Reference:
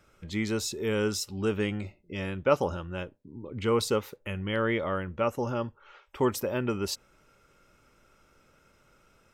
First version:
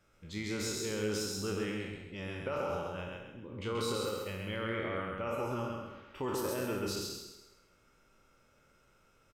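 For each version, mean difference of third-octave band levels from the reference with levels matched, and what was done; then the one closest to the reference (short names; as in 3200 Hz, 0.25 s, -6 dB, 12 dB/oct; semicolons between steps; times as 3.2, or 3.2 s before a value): 9.0 dB: spectral trails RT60 0.88 s; de-hum 73.57 Hz, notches 36; limiter -19 dBFS, peak gain reduction 9.5 dB; feedback echo 0.133 s, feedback 32%, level -3 dB; gain -8.5 dB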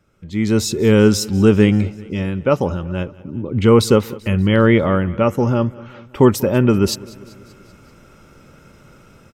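4.5 dB: bell 78 Hz +2 dB 2.1 oct; AGC gain up to 16.5 dB; bell 170 Hz +8.5 dB 2.4 oct; on a send: feedback echo 0.193 s, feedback 60%, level -21.5 dB; on the sum: gain -4 dB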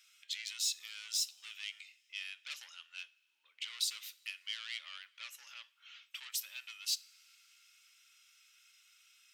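20.5 dB: in parallel at +2 dB: compressor, threshold -39 dBFS, peak gain reduction 20 dB; on the sum: soft clip -25 dBFS, distortion -10 dB; ladder high-pass 2400 Hz, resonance 30%; two-slope reverb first 0.39 s, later 3 s, from -18 dB, DRR 16.5 dB; gain +4.5 dB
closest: second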